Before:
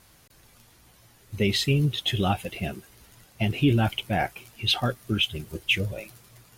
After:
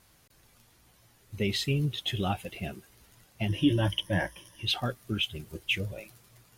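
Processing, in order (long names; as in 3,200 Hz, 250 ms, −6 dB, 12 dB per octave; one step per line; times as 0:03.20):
0:03.48–0:04.65: EQ curve with evenly spaced ripples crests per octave 1.2, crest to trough 16 dB
level −5.5 dB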